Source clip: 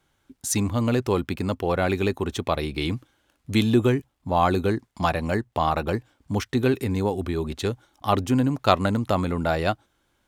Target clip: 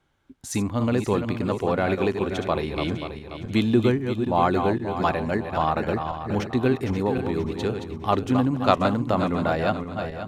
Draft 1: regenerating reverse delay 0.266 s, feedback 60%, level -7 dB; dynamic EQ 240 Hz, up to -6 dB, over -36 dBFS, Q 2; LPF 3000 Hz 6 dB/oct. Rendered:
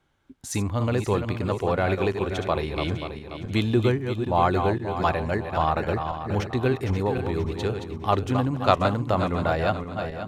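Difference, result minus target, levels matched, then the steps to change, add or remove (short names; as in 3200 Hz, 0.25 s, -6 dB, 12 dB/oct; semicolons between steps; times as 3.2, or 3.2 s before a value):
250 Hz band -3.0 dB
change: dynamic EQ 85 Hz, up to -6 dB, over -36 dBFS, Q 2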